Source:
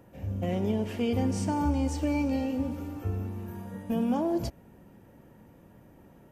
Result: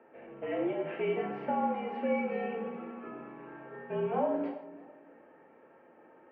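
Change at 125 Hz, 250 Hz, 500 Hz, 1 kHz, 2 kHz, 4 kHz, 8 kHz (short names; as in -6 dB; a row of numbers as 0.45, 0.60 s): -16.0 dB, -8.5 dB, +1.5 dB, +1.5 dB, +1.5 dB, n/a, under -35 dB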